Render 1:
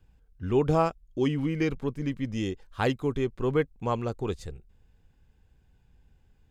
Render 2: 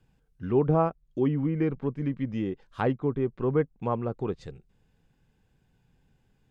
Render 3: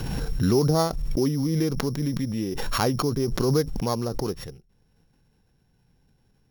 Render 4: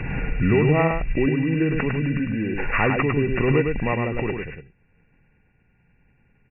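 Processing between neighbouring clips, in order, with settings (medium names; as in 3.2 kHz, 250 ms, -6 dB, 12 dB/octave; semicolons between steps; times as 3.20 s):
low-pass that closes with the level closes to 1.4 kHz, closed at -25 dBFS; resonant low shelf 100 Hz -8 dB, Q 1.5
sorted samples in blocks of 8 samples; swell ahead of each attack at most 22 dB/s; trim +1 dB
knee-point frequency compression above 1.4 kHz 4:1; delay 104 ms -4.5 dB; trim +1.5 dB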